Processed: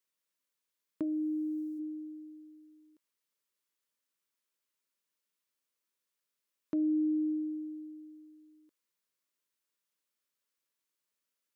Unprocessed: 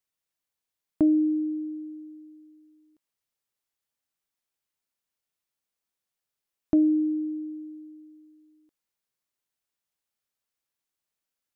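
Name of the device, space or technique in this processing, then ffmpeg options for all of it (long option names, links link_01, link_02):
PA system with an anti-feedback notch: -filter_complex "[0:a]highpass=190,asuperstop=centerf=750:order=4:qfactor=3.4,alimiter=level_in=1.5dB:limit=-24dB:level=0:latency=1:release=382,volume=-1.5dB,asplit=3[link_01][link_02][link_03];[link_01]afade=type=out:start_time=1.02:duration=0.02[link_04];[link_02]bass=frequency=250:gain=-12,treble=frequency=4000:gain=12,afade=type=in:start_time=1.02:duration=0.02,afade=type=out:start_time=1.78:duration=0.02[link_05];[link_03]afade=type=in:start_time=1.78:duration=0.02[link_06];[link_04][link_05][link_06]amix=inputs=3:normalize=0"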